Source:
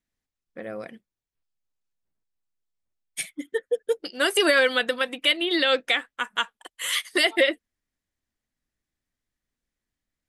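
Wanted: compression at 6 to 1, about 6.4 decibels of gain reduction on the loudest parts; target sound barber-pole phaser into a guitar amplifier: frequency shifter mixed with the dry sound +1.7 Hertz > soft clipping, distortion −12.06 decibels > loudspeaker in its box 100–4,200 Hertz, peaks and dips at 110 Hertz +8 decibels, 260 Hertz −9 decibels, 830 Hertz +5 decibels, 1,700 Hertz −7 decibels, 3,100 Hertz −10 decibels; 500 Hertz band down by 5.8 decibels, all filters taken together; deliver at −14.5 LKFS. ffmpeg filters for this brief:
ffmpeg -i in.wav -filter_complex "[0:a]equalizer=frequency=500:width_type=o:gain=-6.5,acompressor=threshold=-24dB:ratio=6,asplit=2[link_01][link_02];[link_02]afreqshift=1.7[link_03];[link_01][link_03]amix=inputs=2:normalize=1,asoftclip=threshold=-27dB,highpass=100,equalizer=frequency=110:width_type=q:width=4:gain=8,equalizer=frequency=260:width_type=q:width=4:gain=-9,equalizer=frequency=830:width_type=q:width=4:gain=5,equalizer=frequency=1700:width_type=q:width=4:gain=-7,equalizer=frequency=3100:width_type=q:width=4:gain=-10,lowpass=frequency=4200:width=0.5412,lowpass=frequency=4200:width=1.3066,volume=25dB" out.wav

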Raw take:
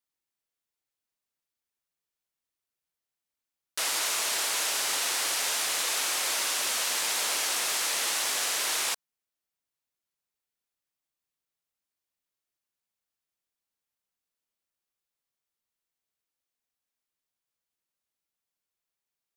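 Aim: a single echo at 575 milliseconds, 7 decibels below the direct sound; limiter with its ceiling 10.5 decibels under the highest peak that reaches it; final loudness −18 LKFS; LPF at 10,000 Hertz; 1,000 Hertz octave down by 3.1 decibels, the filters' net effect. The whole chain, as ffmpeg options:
ffmpeg -i in.wav -af "lowpass=10000,equalizer=frequency=1000:width_type=o:gain=-4,alimiter=level_in=4dB:limit=-24dB:level=0:latency=1,volume=-4dB,aecho=1:1:575:0.447,volume=16.5dB" out.wav

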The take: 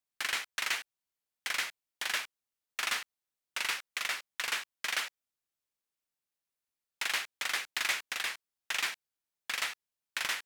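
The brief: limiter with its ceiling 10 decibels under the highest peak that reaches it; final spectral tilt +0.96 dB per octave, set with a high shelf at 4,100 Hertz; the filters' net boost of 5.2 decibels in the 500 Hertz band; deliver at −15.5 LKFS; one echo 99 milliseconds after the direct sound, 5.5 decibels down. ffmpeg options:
ffmpeg -i in.wav -af "equalizer=frequency=500:width_type=o:gain=6.5,highshelf=frequency=4100:gain=5,alimiter=level_in=1dB:limit=-24dB:level=0:latency=1,volume=-1dB,aecho=1:1:99:0.531,volume=21dB" out.wav

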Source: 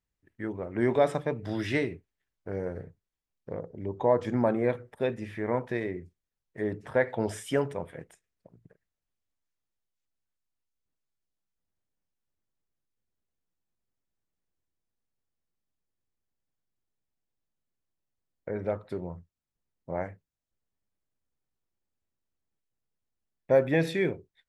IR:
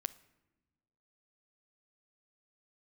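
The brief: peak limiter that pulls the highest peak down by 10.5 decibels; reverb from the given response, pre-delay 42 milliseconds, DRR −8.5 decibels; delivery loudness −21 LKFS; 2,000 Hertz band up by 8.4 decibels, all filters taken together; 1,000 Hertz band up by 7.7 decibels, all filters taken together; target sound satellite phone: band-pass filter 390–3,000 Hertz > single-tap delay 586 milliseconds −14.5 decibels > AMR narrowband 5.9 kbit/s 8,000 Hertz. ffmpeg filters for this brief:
-filter_complex "[0:a]equalizer=frequency=1000:width_type=o:gain=8.5,equalizer=frequency=2000:width_type=o:gain=8,alimiter=limit=-16.5dB:level=0:latency=1,asplit=2[link_01][link_02];[1:a]atrim=start_sample=2205,adelay=42[link_03];[link_02][link_03]afir=irnorm=-1:irlink=0,volume=9.5dB[link_04];[link_01][link_04]amix=inputs=2:normalize=0,highpass=390,lowpass=3000,aecho=1:1:586:0.188,volume=4.5dB" -ar 8000 -c:a libopencore_amrnb -b:a 5900

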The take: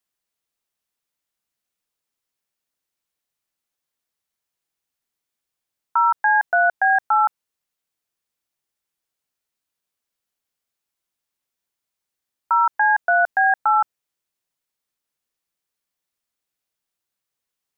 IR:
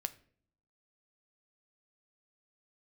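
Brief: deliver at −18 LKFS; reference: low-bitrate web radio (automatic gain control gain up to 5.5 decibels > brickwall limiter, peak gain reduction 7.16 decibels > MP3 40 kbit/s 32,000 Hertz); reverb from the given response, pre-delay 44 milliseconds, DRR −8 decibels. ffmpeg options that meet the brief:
-filter_complex "[0:a]asplit=2[link_01][link_02];[1:a]atrim=start_sample=2205,adelay=44[link_03];[link_02][link_03]afir=irnorm=-1:irlink=0,volume=8.5dB[link_04];[link_01][link_04]amix=inputs=2:normalize=0,dynaudnorm=maxgain=5.5dB,alimiter=limit=-8dB:level=0:latency=1,volume=-2dB" -ar 32000 -c:a libmp3lame -b:a 40k

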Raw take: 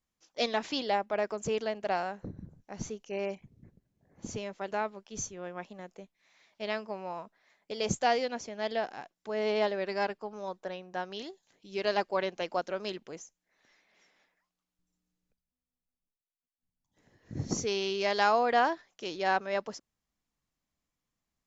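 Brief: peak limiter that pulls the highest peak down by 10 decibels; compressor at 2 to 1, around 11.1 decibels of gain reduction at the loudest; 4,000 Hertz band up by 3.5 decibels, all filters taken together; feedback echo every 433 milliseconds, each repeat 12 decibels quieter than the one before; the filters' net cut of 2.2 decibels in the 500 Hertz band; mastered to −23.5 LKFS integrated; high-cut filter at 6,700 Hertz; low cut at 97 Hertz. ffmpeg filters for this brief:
ffmpeg -i in.wav -af "highpass=97,lowpass=6700,equalizer=frequency=500:width_type=o:gain=-3,equalizer=frequency=4000:width_type=o:gain=5,acompressor=threshold=-42dB:ratio=2,alimiter=level_in=7.5dB:limit=-24dB:level=0:latency=1,volume=-7.5dB,aecho=1:1:433|866|1299:0.251|0.0628|0.0157,volume=21dB" out.wav

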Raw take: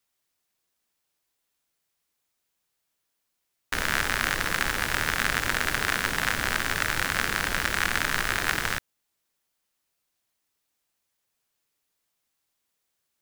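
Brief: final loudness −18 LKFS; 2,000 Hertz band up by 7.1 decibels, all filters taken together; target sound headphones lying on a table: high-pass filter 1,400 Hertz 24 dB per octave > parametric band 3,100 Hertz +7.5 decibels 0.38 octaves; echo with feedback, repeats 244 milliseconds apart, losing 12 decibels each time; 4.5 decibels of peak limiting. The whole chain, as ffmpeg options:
ffmpeg -i in.wav -af "equalizer=frequency=2000:width_type=o:gain=9,alimiter=limit=-6.5dB:level=0:latency=1,highpass=frequency=1400:width=0.5412,highpass=frequency=1400:width=1.3066,equalizer=frequency=3100:width_type=o:width=0.38:gain=7.5,aecho=1:1:244|488|732:0.251|0.0628|0.0157,volume=3dB" out.wav

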